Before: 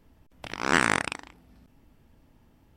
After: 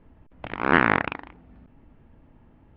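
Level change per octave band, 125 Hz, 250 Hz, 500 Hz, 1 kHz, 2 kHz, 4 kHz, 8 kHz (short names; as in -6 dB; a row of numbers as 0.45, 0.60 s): +5.5 dB, +5.5 dB, +5.5 dB, +4.5 dB, +3.0 dB, -4.5 dB, under -30 dB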